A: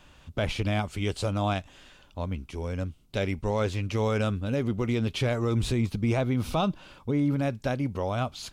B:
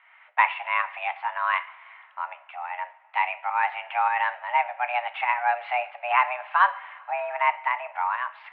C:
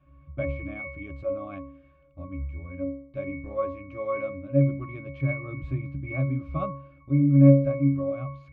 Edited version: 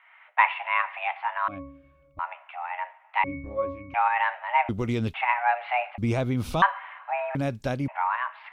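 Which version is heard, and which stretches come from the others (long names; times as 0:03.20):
B
0:01.48–0:02.19: punch in from C
0:03.24–0:03.94: punch in from C
0:04.69–0:05.14: punch in from A
0:05.98–0:06.62: punch in from A
0:07.35–0:07.88: punch in from A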